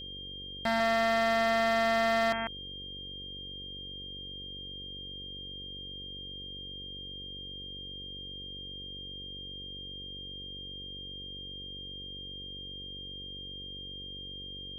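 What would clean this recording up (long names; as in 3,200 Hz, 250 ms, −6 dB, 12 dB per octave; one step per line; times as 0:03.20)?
clipped peaks rebuilt −21 dBFS
hum removal 47.5 Hz, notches 11
notch filter 3,200 Hz, Q 30
echo removal 147 ms −8 dB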